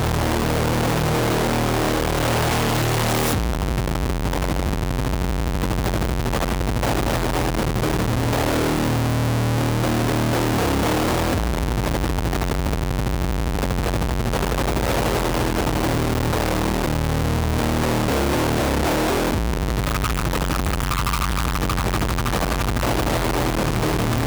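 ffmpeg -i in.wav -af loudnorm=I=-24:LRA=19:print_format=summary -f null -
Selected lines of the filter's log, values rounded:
Input Integrated:    -21.7 LUFS
Input True Peak:      -9.6 dBTP
Input LRA:             2.4 LU
Input Threshold:     -31.7 LUFS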